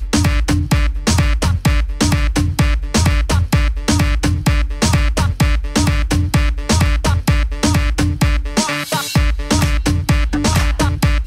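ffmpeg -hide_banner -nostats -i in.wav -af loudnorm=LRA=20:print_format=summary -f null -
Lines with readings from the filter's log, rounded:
Input Integrated:    -16.4 LUFS
Input True Peak:      -4.4 dBTP
Input LRA:             0.7 LU
Input Threshold:     -26.4 LUFS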